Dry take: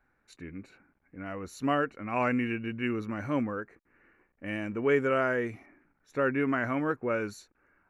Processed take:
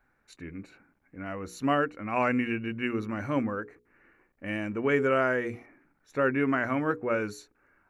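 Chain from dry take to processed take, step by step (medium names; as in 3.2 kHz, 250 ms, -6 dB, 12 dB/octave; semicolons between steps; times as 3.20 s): hum notches 60/120/180/240/300/360/420/480 Hz; trim +2 dB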